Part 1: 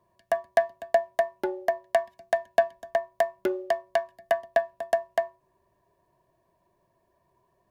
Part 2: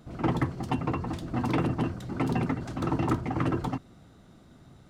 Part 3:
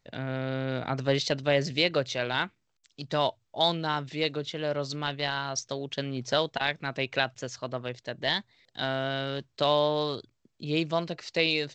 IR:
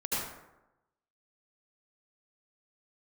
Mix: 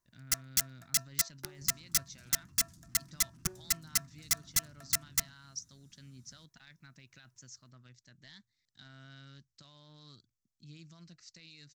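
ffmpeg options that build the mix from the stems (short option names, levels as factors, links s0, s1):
-filter_complex "[0:a]aeval=exprs='if(lt(val(0),0),0.447*val(0),val(0))':c=same,highpass=f=320:w=0.5412,highpass=f=320:w=1.3066,volume=0.75[s0];[1:a]highshelf=f=2800:g=11,acompressor=threshold=0.02:ratio=6,asoftclip=type=tanh:threshold=0.0112,adelay=1550,volume=0.224[s1];[2:a]equalizer=f=150:w=0.75:g=-5,alimiter=limit=0.0841:level=0:latency=1:release=37,volume=0.251[s2];[s0][s1][s2]amix=inputs=3:normalize=0,equalizer=f=460:w=0.57:g=5.5,aeval=exprs='(mod(8.41*val(0)+1,2)-1)/8.41':c=same,firequalizer=gain_entry='entry(160,0);entry(450,-29);entry(830,-24);entry(1300,-10);entry(1900,-10);entry(3000,-13);entry(5700,5);entry(9200,3)':delay=0.05:min_phase=1"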